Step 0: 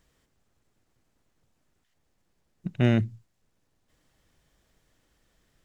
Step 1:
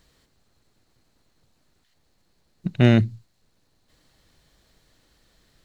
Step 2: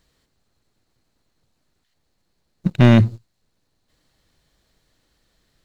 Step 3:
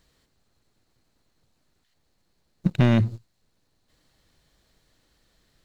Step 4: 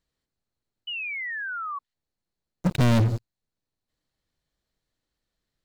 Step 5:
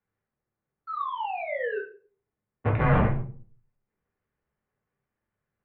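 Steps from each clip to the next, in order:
peaking EQ 4.2 kHz +10.5 dB 0.28 oct; trim +6 dB
waveshaping leveller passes 2
compression 6:1, threshold -16 dBFS, peak gain reduction 8 dB
waveshaping leveller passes 5; painted sound fall, 0.87–1.79 s, 1.1–3 kHz -25 dBFS; trim -7 dB
cycle switcher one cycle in 2, inverted; simulated room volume 370 m³, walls furnished, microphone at 2.8 m; mistuned SSB -160 Hz 210–2500 Hz; trim -3 dB

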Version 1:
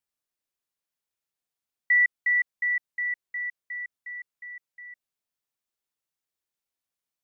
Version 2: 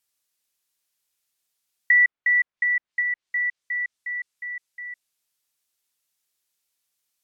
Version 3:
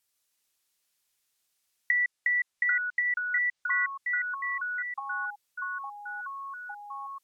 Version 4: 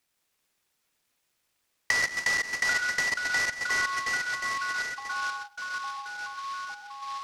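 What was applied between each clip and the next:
low-pass that closes with the level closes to 1.7 kHz, closed at -26.5 dBFS; treble shelf 2 kHz +12 dB; trim +2 dB
compression, threshold -25 dBFS, peak gain reduction 10 dB; ever faster or slower copies 153 ms, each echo -5 st, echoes 3, each echo -6 dB
reverberation RT60 0.40 s, pre-delay 110 ms, DRR 4 dB; delay time shaken by noise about 3.2 kHz, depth 0.038 ms

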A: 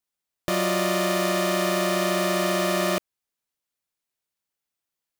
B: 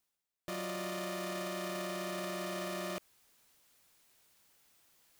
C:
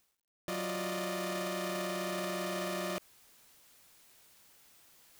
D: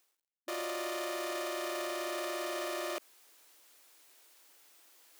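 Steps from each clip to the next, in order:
peak limiter -24.5 dBFS, peak gain reduction 11.5 dB; reverse; upward compressor, threshold -41 dBFS; reverse; trim -6.5 dB
in parallel at +2 dB: peak limiter -42 dBFS, peak gain reduction 11.5 dB; on the sum: word length cut 12-bit, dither none
brick-wall FIR high-pass 260 Hz

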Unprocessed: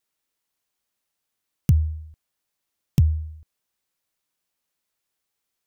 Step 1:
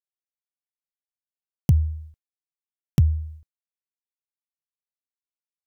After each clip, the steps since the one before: expander -38 dBFS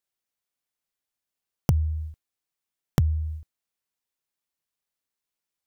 compression 4:1, threshold -29 dBFS, peak gain reduction 13.5 dB; trim +8 dB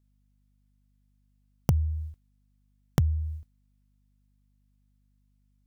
hum 50 Hz, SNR 34 dB; trim -2 dB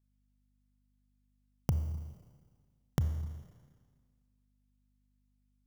reverberation RT60 1.7 s, pre-delay 28 ms, DRR 9 dB; trim -7 dB

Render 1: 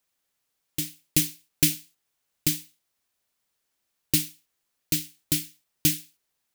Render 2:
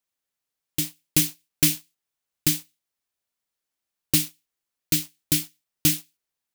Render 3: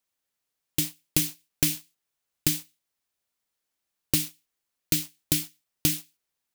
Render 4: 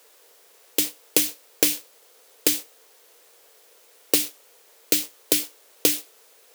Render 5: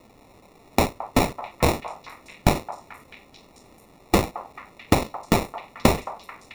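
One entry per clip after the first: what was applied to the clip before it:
waveshaping leveller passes 2; trim -3.5 dB
compression 6:1, threshold -22 dBFS, peak gain reduction 8 dB; trim +2 dB
word length cut 10-bit, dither triangular; resonant high-pass 460 Hz, resonance Q 4.9; trim +4.5 dB
four frequency bands reordered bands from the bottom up 2413; sample-and-hold 28×; repeats whose band climbs or falls 219 ms, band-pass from 950 Hz, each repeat 0.7 oct, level -9 dB; trim +2.5 dB

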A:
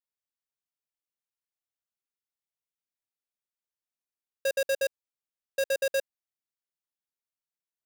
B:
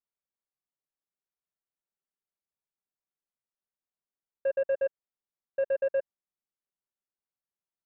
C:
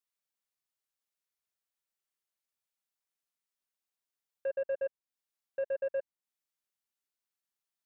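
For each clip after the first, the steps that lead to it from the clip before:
Bessel low-pass 1.2 kHz, order 8; comb 5.2 ms, depth 33%
tape noise reduction on one side only encoder only; trim -5.5 dB

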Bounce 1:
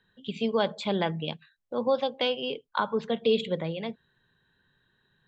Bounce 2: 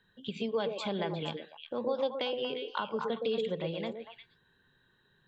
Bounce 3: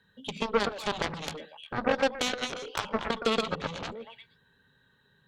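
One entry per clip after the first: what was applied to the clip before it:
compression 2:1, threshold -36 dBFS, peak gain reduction 9.5 dB; on a send: repeats whose band climbs or falls 118 ms, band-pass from 400 Hz, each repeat 1.4 oct, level -0.5 dB
comb of notches 350 Hz; Chebyshev shaper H 2 -13 dB, 5 -16 dB, 7 -8 dB, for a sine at -19 dBFS; trim +4 dB

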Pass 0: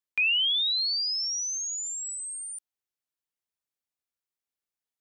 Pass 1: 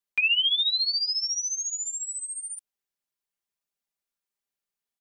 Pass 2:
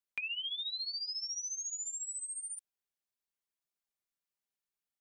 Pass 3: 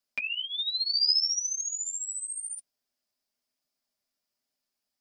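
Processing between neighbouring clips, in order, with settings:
comb 5 ms
compression, threshold -31 dBFS, peak gain reduction 11 dB; trim -5.5 dB
graphic EQ with 31 bands 250 Hz +11 dB, 630 Hz +9 dB, 5 kHz +11 dB; flange 1.1 Hz, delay 6.5 ms, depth 4.4 ms, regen -22%; trim +8.5 dB

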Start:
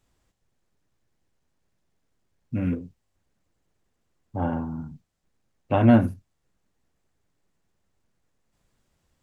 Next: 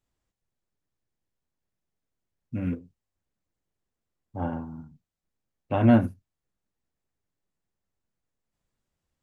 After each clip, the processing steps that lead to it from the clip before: in parallel at -2 dB: peak limiter -16 dBFS, peak gain reduction 9.5 dB; on the sum: upward expansion 1.5:1, over -35 dBFS; trim -4 dB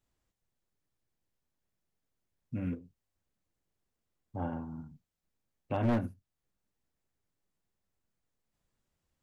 one-sided wavefolder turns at -17 dBFS; compression 1.5:1, threshold -42 dBFS, peak gain reduction 10 dB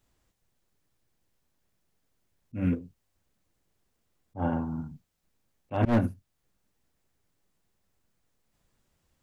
slow attack 130 ms; trim +9 dB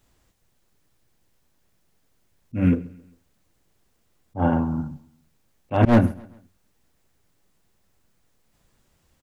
feedback delay 134 ms, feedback 43%, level -22 dB; trim +8 dB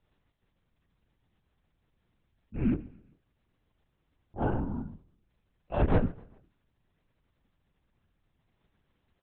LPC vocoder at 8 kHz whisper; trim -8.5 dB

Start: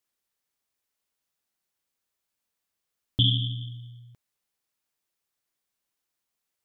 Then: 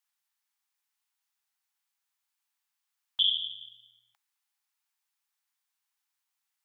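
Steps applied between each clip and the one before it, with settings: elliptic high-pass 800 Hz, stop band 40 dB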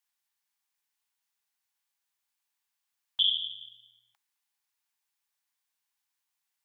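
band-stop 1.3 kHz, Q 14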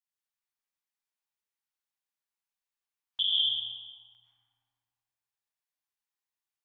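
spectral noise reduction 10 dB; algorithmic reverb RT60 2.4 s, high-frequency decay 0.4×, pre-delay 75 ms, DRR -5.5 dB; trim -4 dB

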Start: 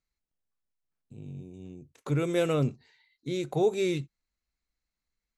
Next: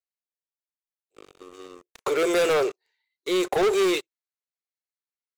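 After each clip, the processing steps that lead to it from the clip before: elliptic high-pass 380 Hz, stop band 40 dB; waveshaping leveller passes 5; trim -2 dB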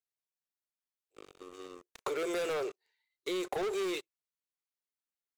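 compression, threshold -29 dBFS, peak gain reduction 9.5 dB; trim -4 dB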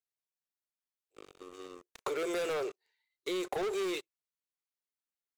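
no audible change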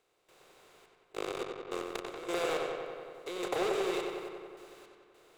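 spectral levelling over time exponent 0.4; random-step tremolo, depth 100%; filtered feedback delay 93 ms, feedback 76%, low-pass 4.6 kHz, level -4.5 dB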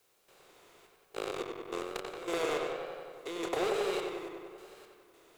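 vibrato 1.1 Hz 94 cents; added noise white -73 dBFS

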